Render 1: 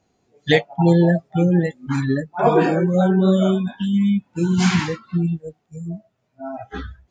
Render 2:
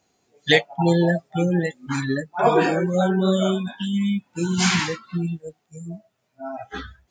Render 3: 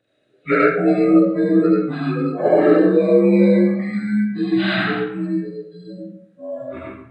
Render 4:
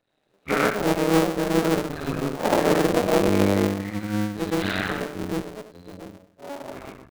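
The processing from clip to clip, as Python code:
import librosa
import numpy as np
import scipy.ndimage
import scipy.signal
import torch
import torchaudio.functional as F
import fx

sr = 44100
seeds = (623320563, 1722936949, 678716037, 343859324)

y1 = fx.tilt_eq(x, sr, slope=2.0)
y2 = fx.partial_stretch(y1, sr, pct=83)
y2 = fx.graphic_eq_31(y2, sr, hz=(125, 315, 500, 1000, 1600, 3150), db=(11, 10, 10, -10, 7, -3))
y2 = fx.rev_freeverb(y2, sr, rt60_s=0.71, hf_ratio=0.65, predelay_ms=35, drr_db=-4.5)
y2 = y2 * 10.0 ** (-4.0 / 20.0)
y3 = fx.cycle_switch(y2, sr, every=2, mode='muted')
y3 = y3 * 10.0 ** (-3.5 / 20.0)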